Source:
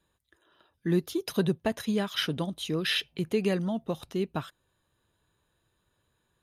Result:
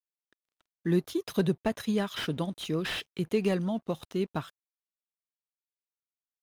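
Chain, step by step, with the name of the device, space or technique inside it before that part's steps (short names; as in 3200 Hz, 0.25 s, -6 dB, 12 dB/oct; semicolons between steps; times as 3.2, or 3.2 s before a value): early transistor amplifier (crossover distortion -56.5 dBFS; slew limiter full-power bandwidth 70 Hz)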